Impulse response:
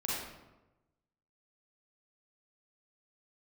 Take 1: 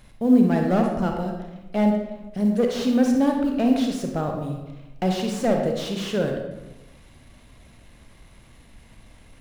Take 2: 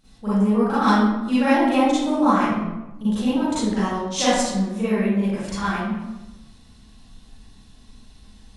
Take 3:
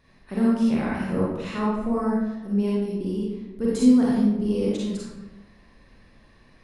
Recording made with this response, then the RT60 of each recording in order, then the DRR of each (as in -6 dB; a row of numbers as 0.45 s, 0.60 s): 3; 1.1 s, 1.1 s, 1.1 s; 2.0 dB, -13.5 dB, -6.5 dB